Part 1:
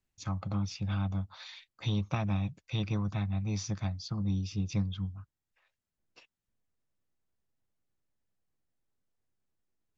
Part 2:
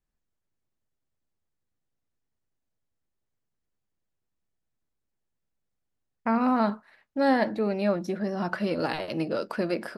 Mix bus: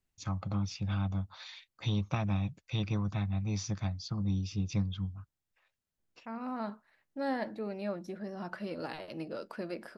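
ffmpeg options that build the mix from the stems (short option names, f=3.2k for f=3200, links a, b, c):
-filter_complex "[0:a]volume=-0.5dB,asplit=2[a][b];[1:a]volume=-11dB[c];[b]apad=whole_len=439685[d];[c][d]sidechaincompress=threshold=-51dB:ratio=8:attack=9.5:release=1160[e];[a][e]amix=inputs=2:normalize=0"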